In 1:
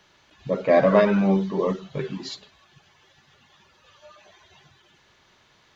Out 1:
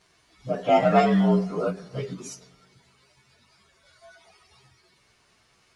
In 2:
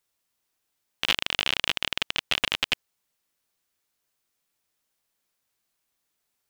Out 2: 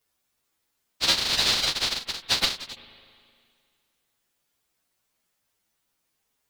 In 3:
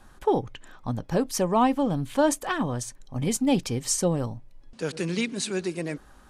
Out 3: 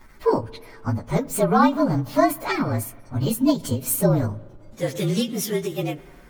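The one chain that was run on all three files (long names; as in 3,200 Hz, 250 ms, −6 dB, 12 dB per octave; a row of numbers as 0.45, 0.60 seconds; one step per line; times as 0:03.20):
partials spread apart or drawn together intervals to 113%
spring reverb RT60 2.1 s, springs 38/51 ms, chirp 75 ms, DRR 19.5 dB
every ending faded ahead of time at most 200 dB per second
loudness normalisation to −23 LKFS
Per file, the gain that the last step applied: +0.5, +9.0, +7.5 decibels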